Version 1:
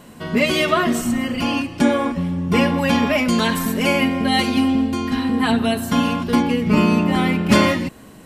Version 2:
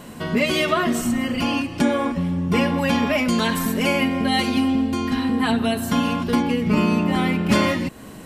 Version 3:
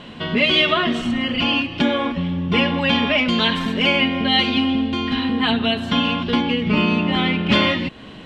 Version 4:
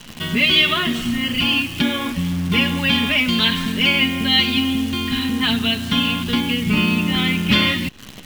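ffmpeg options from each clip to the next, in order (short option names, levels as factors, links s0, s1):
-af "acompressor=threshold=0.0251:ratio=1.5,volume=1.58"
-af "lowpass=f=3300:t=q:w=3.4"
-af "equalizer=f=610:w=0.66:g=-12.5,acrusher=bits=7:dc=4:mix=0:aa=0.000001,volume=1.58"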